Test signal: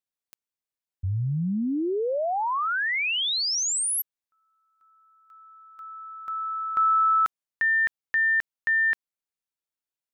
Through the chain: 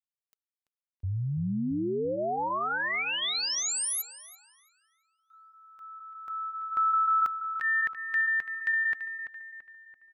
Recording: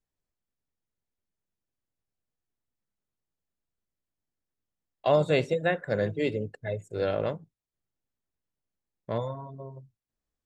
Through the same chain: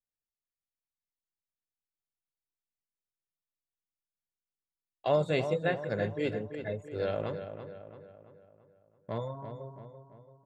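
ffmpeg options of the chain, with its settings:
-filter_complex "[0:a]agate=range=0.251:threshold=0.00224:ratio=3:release=36:detection=peak,flanger=delay=0.2:depth=3.3:regen=-78:speed=0.53:shape=sinusoidal,asplit=2[s0][s1];[s1]adelay=336,lowpass=f=3100:p=1,volume=0.355,asplit=2[s2][s3];[s3]adelay=336,lowpass=f=3100:p=1,volume=0.5,asplit=2[s4][s5];[s5]adelay=336,lowpass=f=3100:p=1,volume=0.5,asplit=2[s6][s7];[s7]adelay=336,lowpass=f=3100:p=1,volume=0.5,asplit=2[s8][s9];[s9]adelay=336,lowpass=f=3100:p=1,volume=0.5,asplit=2[s10][s11];[s11]adelay=336,lowpass=f=3100:p=1,volume=0.5[s12];[s0][s2][s4][s6][s8][s10][s12]amix=inputs=7:normalize=0"

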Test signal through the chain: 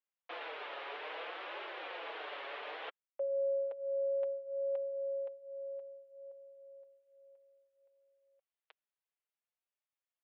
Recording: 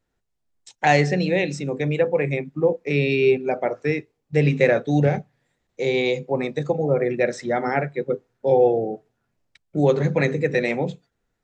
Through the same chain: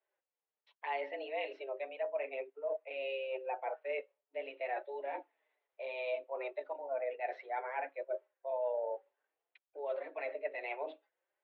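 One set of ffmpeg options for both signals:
-af "areverse,acompressor=threshold=0.0447:ratio=6,areverse,flanger=delay=4:depth=3.3:regen=-12:speed=0.61:shape=triangular,highpass=f=300:t=q:w=0.5412,highpass=f=300:t=q:w=1.307,lowpass=f=3200:t=q:w=0.5176,lowpass=f=3200:t=q:w=0.7071,lowpass=f=3200:t=q:w=1.932,afreqshift=130,volume=0.596"

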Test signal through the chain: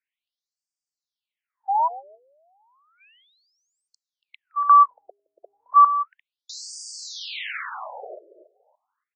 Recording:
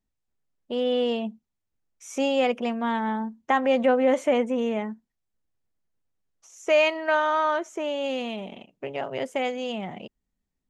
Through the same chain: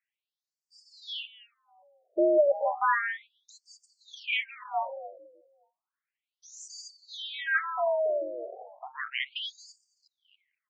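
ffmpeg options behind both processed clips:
-filter_complex "[0:a]afreqshift=75,equalizer=f=2000:w=0.6:g=9,bandreject=f=405.4:t=h:w=4,bandreject=f=810.8:t=h:w=4,bandreject=f=1216.2:t=h:w=4,asplit=2[s0][s1];[s1]adelay=283,lowpass=f=1100:p=1,volume=0.224,asplit=2[s2][s3];[s3]adelay=283,lowpass=f=1100:p=1,volume=0.26,asplit=2[s4][s5];[s5]adelay=283,lowpass=f=1100:p=1,volume=0.26[s6];[s2][s4][s6]amix=inputs=3:normalize=0[s7];[s0][s7]amix=inputs=2:normalize=0,afftfilt=real='re*between(b*sr/1024,470*pow(6500/470,0.5+0.5*sin(2*PI*0.33*pts/sr))/1.41,470*pow(6500/470,0.5+0.5*sin(2*PI*0.33*pts/sr))*1.41)':imag='im*between(b*sr/1024,470*pow(6500/470,0.5+0.5*sin(2*PI*0.33*pts/sr))/1.41,470*pow(6500/470,0.5+0.5*sin(2*PI*0.33*pts/sr))*1.41)':win_size=1024:overlap=0.75"

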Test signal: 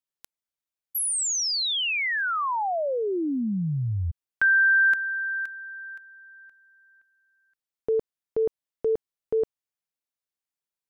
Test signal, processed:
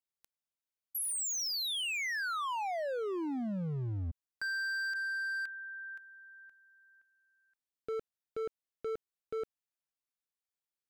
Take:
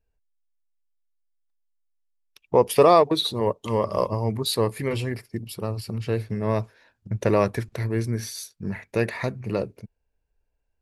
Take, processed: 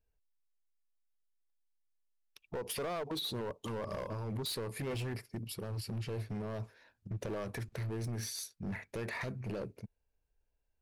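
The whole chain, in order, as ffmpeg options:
-af "acompressor=threshold=0.0708:ratio=8:attack=0.43:release=105:knee=1:detection=peak,asoftclip=type=hard:threshold=0.0376,volume=0.531"

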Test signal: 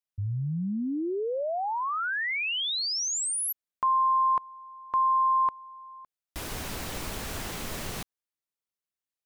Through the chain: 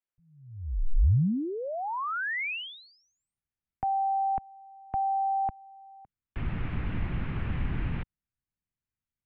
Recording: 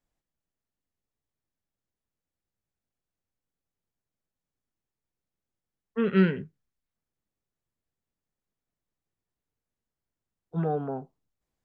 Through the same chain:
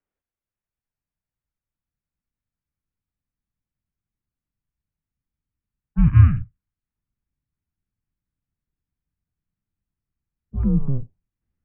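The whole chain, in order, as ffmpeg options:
-af "highpass=f=270:t=q:w=0.5412,highpass=f=270:t=q:w=1.307,lowpass=f=2900:t=q:w=0.5176,lowpass=f=2900:t=q:w=0.7071,lowpass=f=2900:t=q:w=1.932,afreqshift=-270,asubboost=boost=10:cutoff=170,volume=0.891"

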